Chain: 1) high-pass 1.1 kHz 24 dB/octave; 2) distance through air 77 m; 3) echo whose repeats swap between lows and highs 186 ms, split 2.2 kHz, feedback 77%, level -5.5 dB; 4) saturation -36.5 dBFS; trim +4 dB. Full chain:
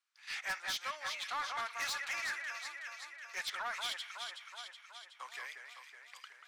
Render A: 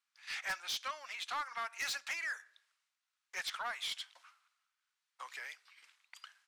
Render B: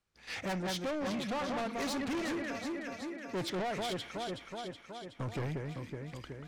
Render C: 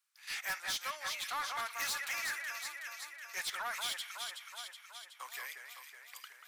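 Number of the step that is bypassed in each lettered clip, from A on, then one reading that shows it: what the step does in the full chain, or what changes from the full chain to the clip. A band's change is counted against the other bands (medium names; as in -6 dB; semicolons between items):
3, crest factor change +1.5 dB; 1, 250 Hz band +33.0 dB; 2, 8 kHz band +4.5 dB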